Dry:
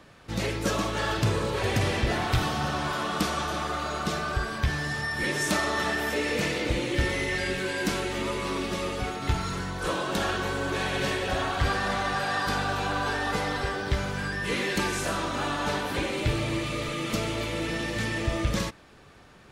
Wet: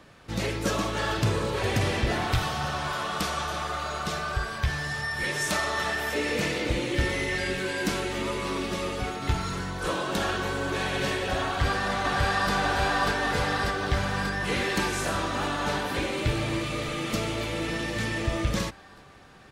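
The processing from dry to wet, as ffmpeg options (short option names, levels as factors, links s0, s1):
-filter_complex "[0:a]asettb=1/sr,asplit=3[s0][s1][s2];[s0]atrim=end=2.344[s3];[s1]atrim=start=2.34:end=6.15,asetpts=PTS-STARTPTS,afade=t=in:d=0.004:c=qsin,afade=t=out:st=3.806:d=0.004:c=qsin,equalizer=f=270:w=1.5:g=-9[s4];[s2]atrim=start=6.146[s5];[s3][s4]acrossfade=d=0.004:c1=hsin:c2=qsin[s6];[s6][s5]acrossfade=d=0.004:c1=qsin:c2=hsin,asplit=2[s7][s8];[s8]afade=t=in:st=11.45:d=0.01,afade=t=out:st=12.52:d=0.01,aecho=0:1:590|1180|1770|2360|2950|3540|4130|4720|5310|5900|6490|7080:0.794328|0.595746|0.44681|0.335107|0.25133|0.188498|0.141373|0.10603|0.0795225|0.0596419|0.0447314|0.0335486[s9];[s7][s9]amix=inputs=2:normalize=0"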